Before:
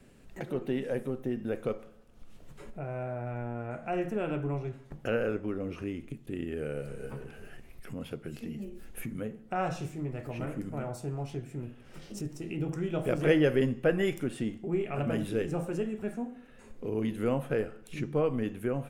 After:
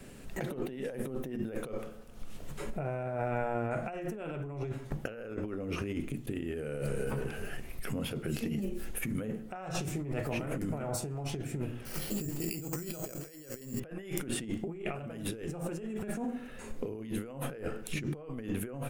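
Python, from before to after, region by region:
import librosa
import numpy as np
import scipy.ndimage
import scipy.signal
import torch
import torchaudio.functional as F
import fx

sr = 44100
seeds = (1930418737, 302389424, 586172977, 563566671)

y = fx.chain(x, sr, fx.resample_bad(factor=6, down='filtered', up='hold'),
    fx.high_shelf(hz=4700.0, db=12.0), at=(11.85, 13.8))
y = fx.high_shelf(y, sr, hz=7000.0, db=5.5)
y = fx.hum_notches(y, sr, base_hz=60, count=6)
y = fx.over_compress(y, sr, threshold_db=-40.0, ratio=-1.0)
y = y * 10.0 ** (2.5 / 20.0)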